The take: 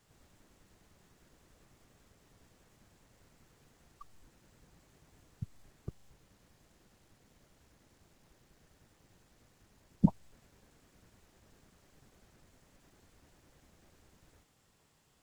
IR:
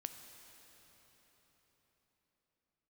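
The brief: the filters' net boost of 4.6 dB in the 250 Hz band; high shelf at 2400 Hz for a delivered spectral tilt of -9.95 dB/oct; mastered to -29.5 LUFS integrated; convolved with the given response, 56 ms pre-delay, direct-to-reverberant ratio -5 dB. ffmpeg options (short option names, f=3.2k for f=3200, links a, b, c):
-filter_complex "[0:a]equalizer=f=250:t=o:g=6.5,highshelf=f=2.4k:g=5,asplit=2[a][b];[1:a]atrim=start_sample=2205,adelay=56[c];[b][c]afir=irnorm=-1:irlink=0,volume=8dB[d];[a][d]amix=inputs=2:normalize=0"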